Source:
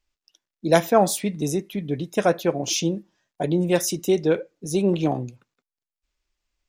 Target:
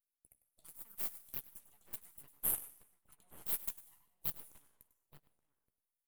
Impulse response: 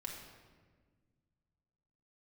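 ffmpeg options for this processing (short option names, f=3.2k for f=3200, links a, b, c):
-filter_complex "[0:a]atempo=1.1,acompressor=threshold=-30dB:ratio=12,aderivative,asplit=2[a][b];[b]adelay=14,volume=-9dB[c];[a][c]amix=inputs=2:normalize=0,asplit=2[d][e];[1:a]atrim=start_sample=2205,afade=t=out:st=0.4:d=0.01,atrim=end_sample=18081,adelay=98[f];[e][f]afir=irnorm=-1:irlink=0,volume=-6dB[g];[d][g]amix=inputs=2:normalize=0,flanger=delay=0.4:depth=5:regen=54:speed=0.45:shape=sinusoidal,aeval=exprs='abs(val(0))':c=same,aeval=exprs='0.0562*(cos(1*acos(clip(val(0)/0.0562,-1,1)))-cos(1*PI/2))+0.01*(cos(4*acos(clip(val(0)/0.0562,-1,1)))-cos(4*PI/2))+0.00501*(cos(5*acos(clip(val(0)/0.0562,-1,1)))-cos(5*PI/2))+0.00447*(cos(6*acos(clip(val(0)/0.0562,-1,1)))-cos(6*PI/2))+0.01*(cos(7*acos(clip(val(0)/0.0562,-1,1)))-cos(7*PI/2))':c=same,alimiter=level_in=11dB:limit=-24dB:level=0:latency=1:release=147,volume=-11dB,highshelf=f=7.7k:t=q:w=1.5:g=13,asplit=2[h][i];[i]adelay=874.6,volume=-11dB,highshelf=f=4k:g=-19.7[j];[h][j]amix=inputs=2:normalize=0,volume=3.5dB"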